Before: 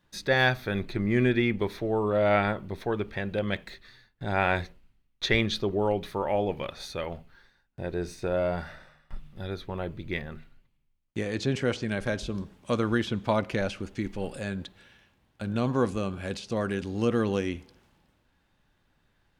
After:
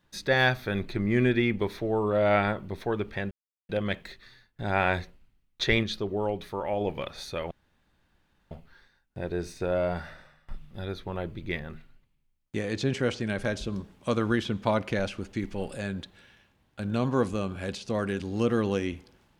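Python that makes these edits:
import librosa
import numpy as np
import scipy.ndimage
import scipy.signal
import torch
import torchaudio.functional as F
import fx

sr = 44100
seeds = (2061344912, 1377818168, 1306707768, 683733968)

y = fx.edit(x, sr, fx.insert_silence(at_s=3.31, length_s=0.38),
    fx.clip_gain(start_s=5.45, length_s=0.98, db=-3.0),
    fx.insert_room_tone(at_s=7.13, length_s=1.0), tone=tone)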